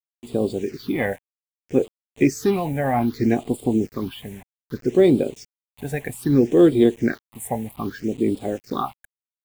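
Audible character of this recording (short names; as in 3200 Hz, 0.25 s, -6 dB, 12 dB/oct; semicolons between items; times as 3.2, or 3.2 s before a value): a quantiser's noise floor 8-bit, dither none; phasing stages 6, 0.63 Hz, lowest notch 330–1700 Hz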